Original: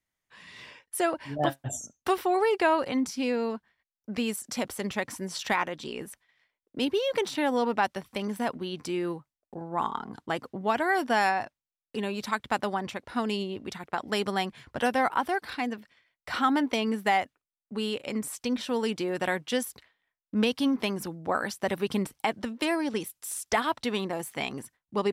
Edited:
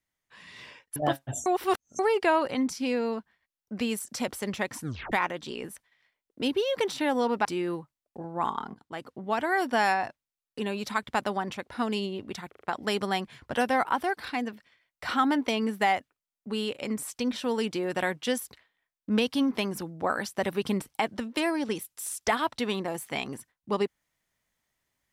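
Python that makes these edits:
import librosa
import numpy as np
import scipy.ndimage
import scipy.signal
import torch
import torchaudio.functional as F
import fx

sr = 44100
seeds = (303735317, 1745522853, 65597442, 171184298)

y = fx.edit(x, sr, fx.cut(start_s=0.96, length_s=0.37),
    fx.reverse_span(start_s=1.83, length_s=0.53),
    fx.tape_stop(start_s=5.17, length_s=0.32),
    fx.cut(start_s=7.82, length_s=1.0),
    fx.fade_in_from(start_s=10.11, length_s=1.09, curve='qsin', floor_db=-15.5),
    fx.stutter(start_s=13.86, slice_s=0.04, count=4), tone=tone)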